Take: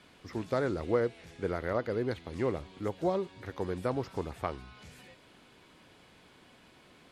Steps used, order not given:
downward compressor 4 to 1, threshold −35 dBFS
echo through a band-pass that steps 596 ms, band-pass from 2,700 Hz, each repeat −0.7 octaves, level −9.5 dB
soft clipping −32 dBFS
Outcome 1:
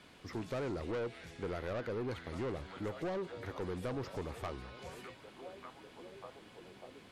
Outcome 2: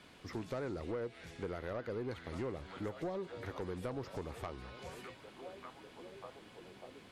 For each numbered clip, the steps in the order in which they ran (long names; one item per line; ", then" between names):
echo through a band-pass that steps, then soft clipping, then downward compressor
echo through a band-pass that steps, then downward compressor, then soft clipping